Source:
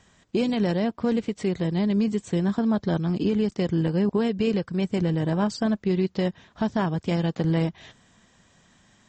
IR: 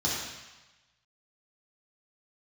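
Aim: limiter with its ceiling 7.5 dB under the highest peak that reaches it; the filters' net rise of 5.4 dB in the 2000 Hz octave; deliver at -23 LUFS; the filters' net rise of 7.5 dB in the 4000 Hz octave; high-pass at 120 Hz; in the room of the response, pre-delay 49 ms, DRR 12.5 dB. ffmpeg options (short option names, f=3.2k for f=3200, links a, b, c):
-filter_complex "[0:a]highpass=120,equalizer=f=2k:t=o:g=4.5,equalizer=f=4k:t=o:g=8.5,alimiter=limit=-18.5dB:level=0:latency=1,asplit=2[a][b];[1:a]atrim=start_sample=2205,adelay=49[c];[b][c]afir=irnorm=-1:irlink=0,volume=-22dB[d];[a][d]amix=inputs=2:normalize=0,volume=4.5dB"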